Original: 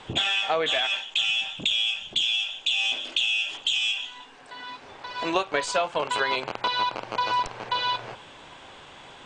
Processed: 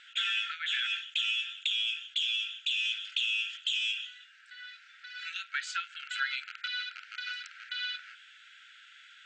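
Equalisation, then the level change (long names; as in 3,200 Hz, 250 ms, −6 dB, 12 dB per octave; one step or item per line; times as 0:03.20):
linear-phase brick-wall high-pass 1,300 Hz
Chebyshev low-pass filter 7,700 Hz, order 4
high-shelf EQ 2,300 Hz −9.5 dB
0.0 dB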